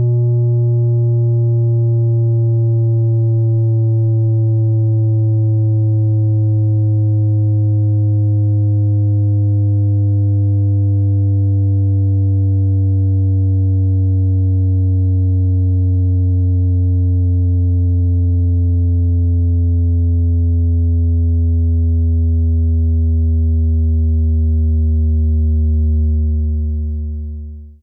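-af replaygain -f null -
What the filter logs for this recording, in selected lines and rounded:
track_gain = +3.0 dB
track_peak = 0.193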